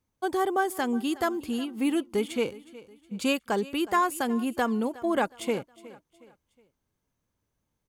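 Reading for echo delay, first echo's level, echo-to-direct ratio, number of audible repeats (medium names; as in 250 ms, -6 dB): 365 ms, -19.0 dB, -18.5 dB, 2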